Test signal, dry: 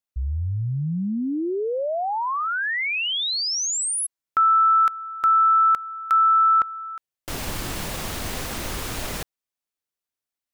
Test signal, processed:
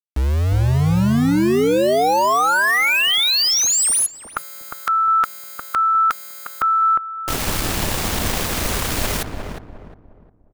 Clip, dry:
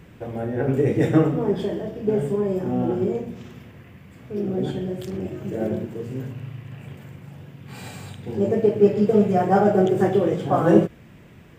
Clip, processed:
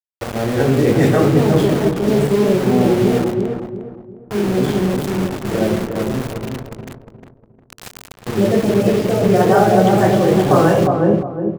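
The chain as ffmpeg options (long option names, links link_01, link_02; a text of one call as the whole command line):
ffmpeg -i in.wav -filter_complex "[0:a]aeval=exprs='val(0)*gte(abs(val(0)),0.0335)':channel_layout=same,asplit=2[link_01][link_02];[link_02]adelay=356,lowpass=frequency=1000:poles=1,volume=-4dB,asplit=2[link_03][link_04];[link_04]adelay=356,lowpass=frequency=1000:poles=1,volume=0.37,asplit=2[link_05][link_06];[link_06]adelay=356,lowpass=frequency=1000:poles=1,volume=0.37,asplit=2[link_07][link_08];[link_08]adelay=356,lowpass=frequency=1000:poles=1,volume=0.37,asplit=2[link_09][link_10];[link_10]adelay=356,lowpass=frequency=1000:poles=1,volume=0.37[link_11];[link_01][link_03][link_05][link_07][link_09][link_11]amix=inputs=6:normalize=0,afftfilt=real='re*lt(hypot(re,im),1.12)':imag='im*lt(hypot(re,im),1.12)':win_size=1024:overlap=0.75,volume=8dB" out.wav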